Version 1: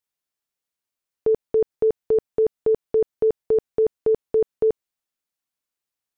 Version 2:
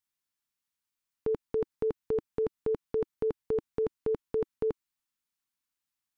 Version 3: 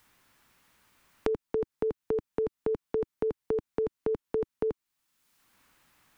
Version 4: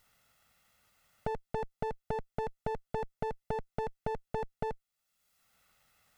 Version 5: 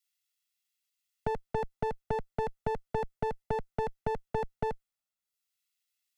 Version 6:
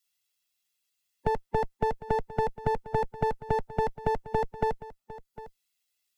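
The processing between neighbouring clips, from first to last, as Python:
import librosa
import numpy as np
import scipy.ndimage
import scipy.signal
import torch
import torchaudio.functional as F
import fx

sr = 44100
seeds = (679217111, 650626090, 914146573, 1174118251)

y1 = fx.band_shelf(x, sr, hz=520.0, db=-9.0, octaves=1.2)
y1 = F.gain(torch.from_numpy(y1), -1.5).numpy()
y2 = fx.band_squash(y1, sr, depth_pct=100)
y3 = fx.lower_of_two(y2, sr, delay_ms=1.5)
y3 = F.gain(torch.from_numpy(y3), -2.5).numpy()
y4 = fx.band_widen(y3, sr, depth_pct=100)
y4 = F.gain(torch.from_numpy(y4), 2.5).numpy()
y5 = fx.spec_quant(y4, sr, step_db=15)
y5 = y5 + 10.0 ** (-16.5 / 20.0) * np.pad(y5, (int(754 * sr / 1000.0), 0))[:len(y5)]
y5 = F.gain(torch.from_numpy(y5), 5.0).numpy()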